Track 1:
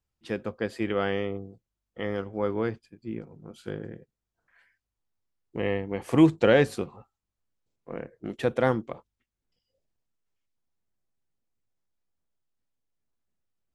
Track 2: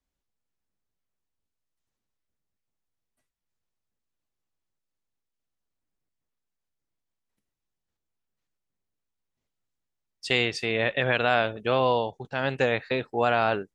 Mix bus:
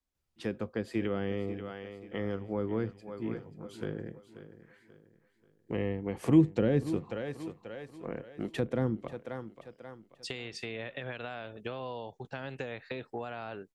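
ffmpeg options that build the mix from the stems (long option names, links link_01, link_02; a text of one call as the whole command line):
ffmpeg -i stem1.wav -i stem2.wav -filter_complex "[0:a]adelay=150,volume=-1dB,asplit=2[link_01][link_02];[link_02]volume=-14dB[link_03];[1:a]acompressor=threshold=-29dB:ratio=6,volume=-4dB[link_04];[link_03]aecho=0:1:535|1070|1605|2140|2675:1|0.36|0.13|0.0467|0.0168[link_05];[link_01][link_04][link_05]amix=inputs=3:normalize=0,acrossover=split=370[link_06][link_07];[link_07]acompressor=threshold=-37dB:ratio=6[link_08];[link_06][link_08]amix=inputs=2:normalize=0" out.wav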